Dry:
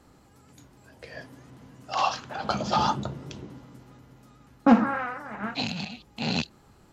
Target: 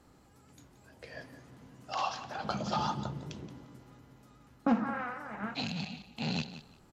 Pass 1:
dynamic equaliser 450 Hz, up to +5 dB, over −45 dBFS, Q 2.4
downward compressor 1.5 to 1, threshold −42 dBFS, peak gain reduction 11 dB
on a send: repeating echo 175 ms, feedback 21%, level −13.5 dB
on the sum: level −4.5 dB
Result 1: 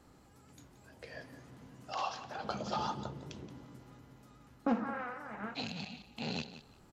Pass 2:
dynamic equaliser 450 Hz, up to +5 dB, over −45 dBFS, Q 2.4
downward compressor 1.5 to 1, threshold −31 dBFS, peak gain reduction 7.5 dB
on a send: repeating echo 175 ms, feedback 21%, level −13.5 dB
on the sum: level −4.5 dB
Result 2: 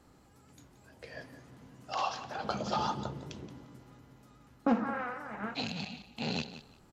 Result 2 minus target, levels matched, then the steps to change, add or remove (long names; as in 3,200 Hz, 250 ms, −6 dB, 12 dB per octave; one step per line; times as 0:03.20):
125 Hz band −2.5 dB
change: dynamic equaliser 160 Hz, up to +5 dB, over −45 dBFS, Q 2.4